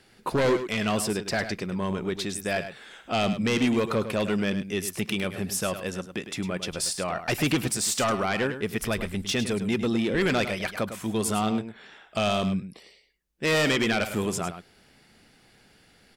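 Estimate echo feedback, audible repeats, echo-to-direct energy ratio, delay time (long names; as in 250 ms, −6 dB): repeats not evenly spaced, 1, −10.5 dB, 104 ms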